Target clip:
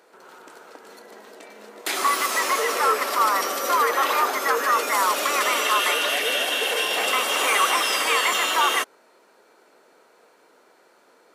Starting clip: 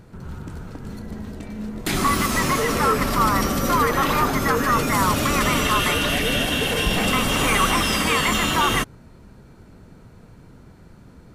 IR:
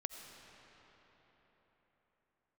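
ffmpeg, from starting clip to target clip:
-af "highpass=f=430:w=0.5412,highpass=f=430:w=1.3066"

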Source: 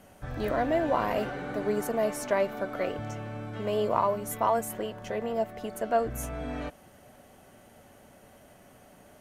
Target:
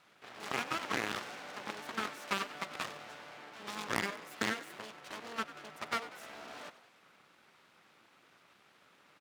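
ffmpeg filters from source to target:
-filter_complex "[0:a]acrossover=split=540 4500:gain=0.158 1 0.112[s0][s1][s2];[s0][s1][s2]amix=inputs=3:normalize=0,acompressor=threshold=0.0316:ratio=3,aeval=exprs='0.106*(cos(1*acos(clip(val(0)/0.106,-1,1)))-cos(1*PI/2))+0.0473*(cos(2*acos(clip(val(0)/0.106,-1,1)))-cos(2*PI/2))+0.00531*(cos(5*acos(clip(val(0)/0.106,-1,1)))-cos(5*PI/2))+0.0335*(cos(7*acos(clip(val(0)/0.106,-1,1)))-cos(7*PI/2))+0.0133*(cos(8*acos(clip(val(0)/0.106,-1,1)))-cos(8*PI/2))':c=same,aeval=exprs='abs(val(0))':c=same,highpass=190,asplit=2[s3][s4];[s4]asplit=5[s5][s6][s7][s8][s9];[s5]adelay=96,afreqshift=56,volume=0.158[s10];[s6]adelay=192,afreqshift=112,volume=0.0902[s11];[s7]adelay=288,afreqshift=168,volume=0.0513[s12];[s8]adelay=384,afreqshift=224,volume=0.0295[s13];[s9]adelay=480,afreqshift=280,volume=0.0168[s14];[s10][s11][s12][s13][s14]amix=inputs=5:normalize=0[s15];[s3][s15]amix=inputs=2:normalize=0"

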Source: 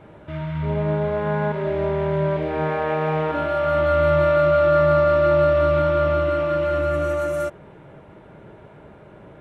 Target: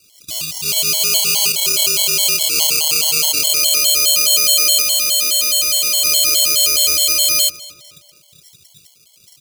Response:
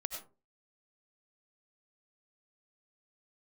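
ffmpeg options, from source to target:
-filter_complex "[0:a]afwtdn=0.0316,acrossover=split=240|910[s0][s1][s2];[s0]acompressor=threshold=0.0141:ratio=6[s3];[s3][s1][s2]amix=inputs=3:normalize=0,alimiter=limit=0.133:level=0:latency=1:release=254,acrusher=samples=24:mix=1:aa=0.000001,asplit=2[s4][s5];[s5]adelay=232,lowpass=f=3300:p=1,volume=0.141,asplit=2[s6][s7];[s7]adelay=232,lowpass=f=3300:p=1,volume=0.51,asplit=2[s8][s9];[s9]adelay=232,lowpass=f=3300:p=1,volume=0.51,asplit=2[s10][s11];[s11]adelay=232,lowpass=f=3300:p=1,volume=0.51[s12];[s4][s6][s8][s10][s12]amix=inputs=5:normalize=0,asettb=1/sr,asplit=3[s13][s14][s15];[s13]atrim=end=4.824[s16];[s14]atrim=start=4.82:end=6.05,asetpts=PTS-STARTPTS,afade=t=in:d=0.004:c=qsin,afade=t=out:st=1.226:d=0.004:c=qsin,asoftclip=type=hard:threshold=0.0531[s17];[s15]atrim=start=6.046[s18];[s16][s17]acrossfade=d=0.004:c1=hsin:c2=qsin[s19];[s19][s18]acrossfade=d=0.004:c1=qsin:c2=hsin,aexciter=amount=12.4:drive=9.6:freq=2700,afftfilt=real='re*gt(sin(2*PI*4.8*pts/sr)*(1-2*mod(floor(b*sr/1024/570),2)),0)':imag='im*gt(sin(2*PI*4.8*pts/sr)*(1-2*mod(floor(b*sr/1024/570),2)),0)':win_size=1024:overlap=0.75,volume=0.668"

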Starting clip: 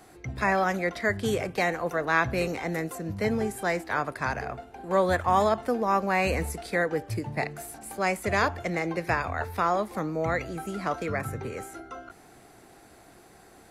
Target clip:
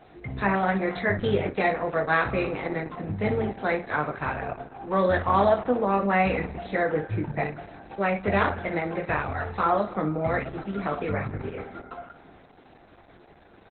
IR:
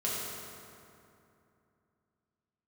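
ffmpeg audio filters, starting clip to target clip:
-filter_complex "[0:a]aecho=1:1:20|59:0.631|0.299,asplit=2[s0][s1];[1:a]atrim=start_sample=2205,asetrate=52920,aresample=44100,lowpass=2100[s2];[s1][s2]afir=irnorm=-1:irlink=0,volume=0.126[s3];[s0][s3]amix=inputs=2:normalize=0,volume=1.12" -ar 48000 -c:a libopus -b:a 8k

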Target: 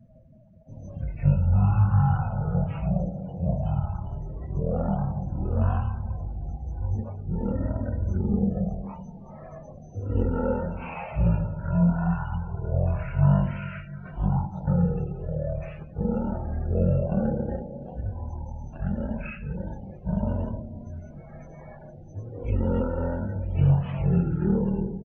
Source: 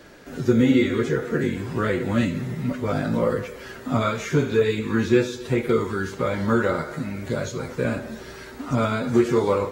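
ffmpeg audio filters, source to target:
-af "asetrate=17111,aresample=44100,afftdn=nr=29:nf=-40,volume=0.708"

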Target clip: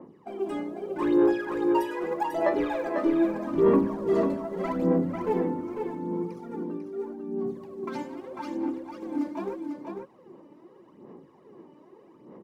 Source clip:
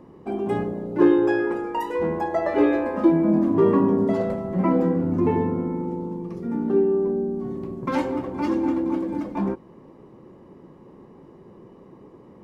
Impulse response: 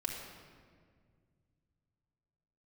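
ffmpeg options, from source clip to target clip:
-filter_complex "[0:a]highpass=210,asettb=1/sr,asplit=3[s0][s1][s2];[s0]atrim=end=6.624[s3];[s1]atrim=start=6.62:end=9.02,asetpts=PTS-STARTPTS,afade=t=in:d=0.004:c=qsin,afade=t=out:st=2.396:d=0.004:c=qsin,acompressor=threshold=0.0355:ratio=5[s4];[s2]atrim=start=9.016[s5];[s3][s4]acrossfade=d=0.004:c1=hsin:c2=qsin[s6];[s6][s5]acrossfade=d=0.004:c1=qsin:c2=hsin,asoftclip=type=tanh:threshold=0.2,aphaser=in_gain=1:out_gain=1:delay=3.4:decay=0.71:speed=0.81:type=sinusoidal,aecho=1:1:496:0.562,adynamicequalizer=threshold=0.0112:dfrequency=2900:dqfactor=0.7:tfrequency=2900:tqfactor=0.7:attack=5:release=100:ratio=0.375:range=2.5:mode=boostabove:tftype=highshelf,volume=0.398"

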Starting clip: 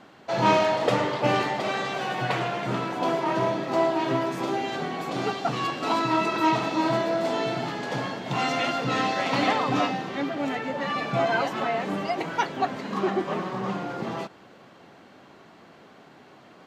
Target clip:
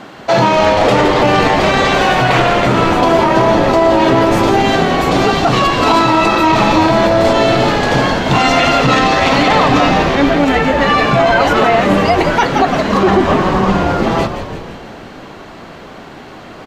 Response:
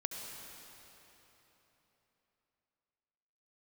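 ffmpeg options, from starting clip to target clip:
-filter_complex "[0:a]asplit=9[s0][s1][s2][s3][s4][s5][s6][s7][s8];[s1]adelay=168,afreqshift=-110,volume=0.355[s9];[s2]adelay=336,afreqshift=-220,volume=0.219[s10];[s3]adelay=504,afreqshift=-330,volume=0.136[s11];[s4]adelay=672,afreqshift=-440,volume=0.0841[s12];[s5]adelay=840,afreqshift=-550,volume=0.0525[s13];[s6]adelay=1008,afreqshift=-660,volume=0.0324[s14];[s7]adelay=1176,afreqshift=-770,volume=0.0202[s15];[s8]adelay=1344,afreqshift=-880,volume=0.0124[s16];[s0][s9][s10][s11][s12][s13][s14][s15][s16]amix=inputs=9:normalize=0,alimiter=level_in=7.94:limit=0.891:release=50:level=0:latency=1,volume=0.891"

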